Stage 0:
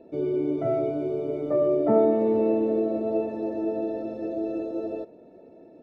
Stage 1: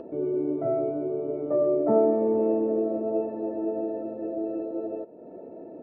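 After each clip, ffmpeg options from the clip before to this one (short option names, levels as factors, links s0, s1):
-af "lowpass=1200,lowshelf=f=120:g=-10.5,acompressor=mode=upward:threshold=0.0251:ratio=2.5"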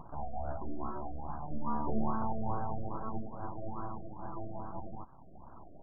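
-af "equalizer=f=130:t=o:w=1.2:g=-12,aeval=exprs='abs(val(0))':c=same,afftfilt=real='re*lt(b*sr/1024,710*pow(1700/710,0.5+0.5*sin(2*PI*2.4*pts/sr)))':imag='im*lt(b*sr/1024,710*pow(1700/710,0.5+0.5*sin(2*PI*2.4*pts/sr)))':win_size=1024:overlap=0.75,volume=0.562"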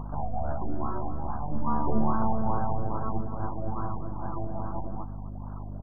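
-af "aeval=exprs='val(0)+0.00794*(sin(2*PI*50*n/s)+sin(2*PI*2*50*n/s)/2+sin(2*PI*3*50*n/s)/3+sin(2*PI*4*50*n/s)/4+sin(2*PI*5*50*n/s)/5)':c=same,aecho=1:1:249:0.251,volume=2.11"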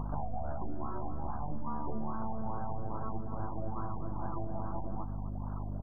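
-af "acompressor=threshold=0.0316:ratio=6"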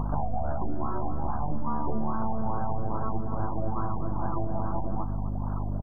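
-af "aecho=1:1:727:0.0668,volume=2.37"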